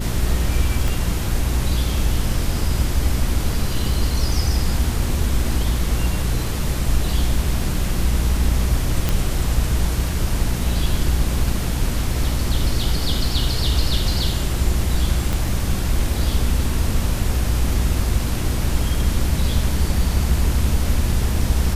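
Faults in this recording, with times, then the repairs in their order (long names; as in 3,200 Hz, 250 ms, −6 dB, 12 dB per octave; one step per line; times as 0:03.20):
mains hum 60 Hz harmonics 6 −24 dBFS
0:00.88: click
0:09.09: click
0:15.33: click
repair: click removal
hum removal 60 Hz, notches 6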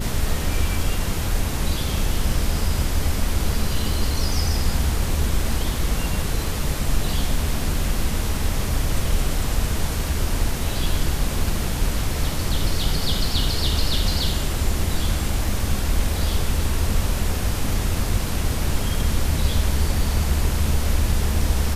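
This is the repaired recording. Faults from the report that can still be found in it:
0:00.88: click
0:15.33: click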